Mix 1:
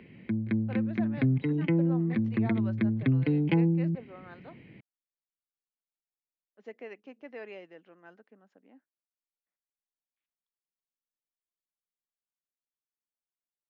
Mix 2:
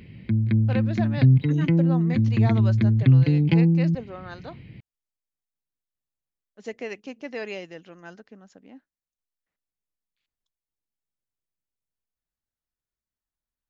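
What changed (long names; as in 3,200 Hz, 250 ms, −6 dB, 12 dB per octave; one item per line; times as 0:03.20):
speech +9.0 dB
master: remove three-way crossover with the lows and the highs turned down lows −17 dB, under 200 Hz, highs −20 dB, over 2,900 Hz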